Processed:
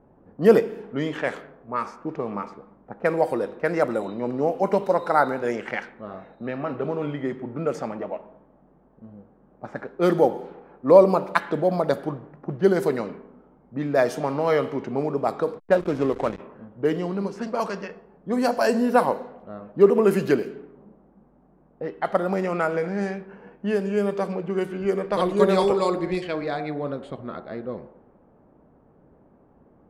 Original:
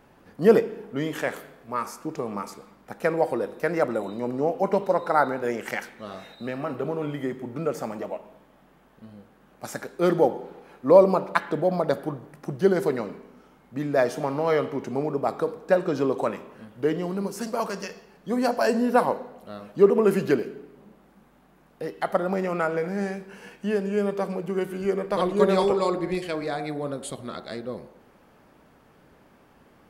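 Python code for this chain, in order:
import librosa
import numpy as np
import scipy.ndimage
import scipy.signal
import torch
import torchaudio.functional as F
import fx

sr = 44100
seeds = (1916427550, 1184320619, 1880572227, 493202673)

y = fx.backlash(x, sr, play_db=-27.5, at=(15.58, 16.38), fade=0.02)
y = fx.env_lowpass(y, sr, base_hz=680.0, full_db=-20.5)
y = y * librosa.db_to_amplitude(1.5)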